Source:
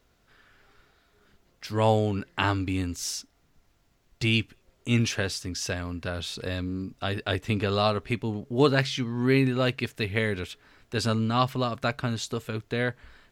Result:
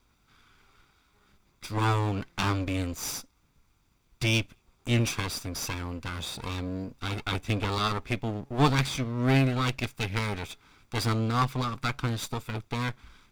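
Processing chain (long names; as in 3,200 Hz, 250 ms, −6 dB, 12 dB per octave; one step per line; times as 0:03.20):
lower of the sound and its delayed copy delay 0.85 ms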